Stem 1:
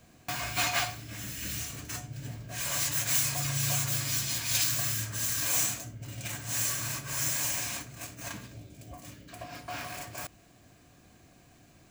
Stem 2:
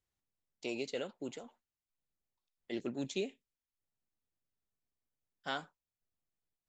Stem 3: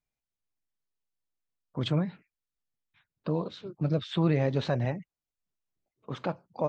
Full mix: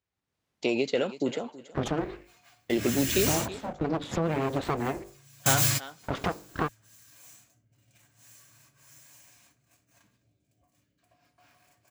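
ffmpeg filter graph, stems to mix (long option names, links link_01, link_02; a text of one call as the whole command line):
ffmpeg -i stem1.wav -i stem2.wav -i stem3.wav -filter_complex "[0:a]dynaudnorm=framelen=200:gausssize=9:maxgain=12dB,adelay=1700,volume=-15.5dB[link_01];[1:a]volume=2.5dB,asplit=3[link_02][link_03][link_04];[link_03]volume=-19.5dB[link_05];[2:a]bandreject=frequency=50:width_type=h:width=6,bandreject=frequency=100:width_type=h:width=6,bandreject=frequency=150:width_type=h:width=6,bandreject=frequency=200:width_type=h:width=6,bandreject=frequency=250:width_type=h:width=6,bandreject=frequency=300:width_type=h:width=6,bandreject=frequency=350:width_type=h:width=6,bandreject=frequency=400:width_type=h:width=6,aeval=exprs='abs(val(0))':channel_layout=same,volume=0dB[link_06];[link_04]apad=whole_len=604475[link_07];[link_01][link_07]sidechaingate=range=-33dB:threshold=-58dB:ratio=16:detection=peak[link_08];[link_02][link_06]amix=inputs=2:normalize=0,aemphasis=mode=reproduction:type=50fm,acompressor=threshold=-34dB:ratio=4,volume=0dB[link_09];[link_05]aecho=0:1:324|648|972|1296:1|0.22|0.0484|0.0106[link_10];[link_08][link_09][link_10]amix=inputs=3:normalize=0,highpass=59,dynaudnorm=framelen=110:gausssize=5:maxgain=12dB" out.wav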